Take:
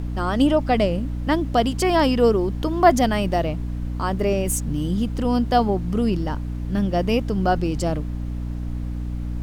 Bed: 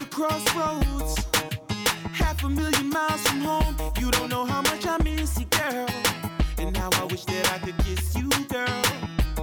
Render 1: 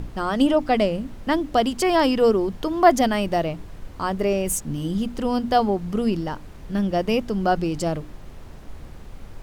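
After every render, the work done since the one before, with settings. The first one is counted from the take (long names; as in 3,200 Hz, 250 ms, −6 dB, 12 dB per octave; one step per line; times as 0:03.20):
mains-hum notches 60/120/180/240/300 Hz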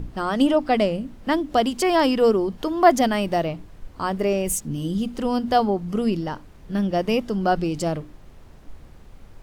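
noise reduction from a noise print 6 dB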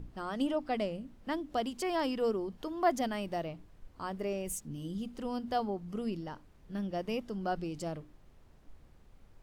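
level −13.5 dB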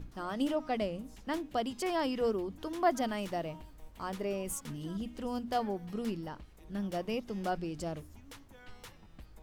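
mix in bed −29 dB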